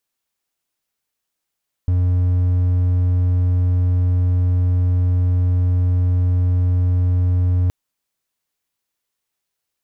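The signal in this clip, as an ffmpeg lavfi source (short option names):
-f lavfi -i "aevalsrc='0.266*(1-4*abs(mod(90*t+0.25,1)-0.5))':d=5.82:s=44100"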